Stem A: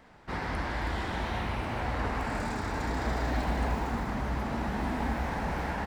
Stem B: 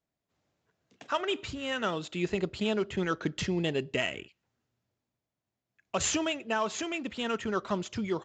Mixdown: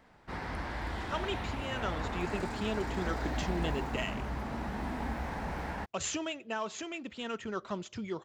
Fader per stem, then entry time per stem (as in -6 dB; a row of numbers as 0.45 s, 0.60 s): -5.0 dB, -6.0 dB; 0.00 s, 0.00 s